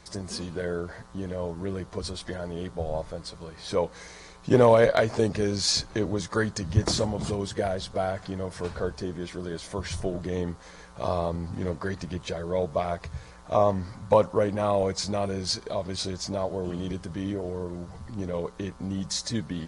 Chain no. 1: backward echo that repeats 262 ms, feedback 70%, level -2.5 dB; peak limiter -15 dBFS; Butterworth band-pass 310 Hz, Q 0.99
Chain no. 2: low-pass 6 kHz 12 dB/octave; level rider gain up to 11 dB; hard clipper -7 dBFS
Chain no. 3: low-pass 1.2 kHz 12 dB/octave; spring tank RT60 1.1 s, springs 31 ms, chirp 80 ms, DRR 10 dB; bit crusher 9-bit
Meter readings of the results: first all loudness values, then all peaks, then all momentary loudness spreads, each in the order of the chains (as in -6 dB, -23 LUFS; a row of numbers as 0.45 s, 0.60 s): -32.0 LUFS, -20.5 LUFS, -28.5 LUFS; -15.5 dBFS, -7.0 dBFS, -7.0 dBFS; 8 LU, 9 LU, 13 LU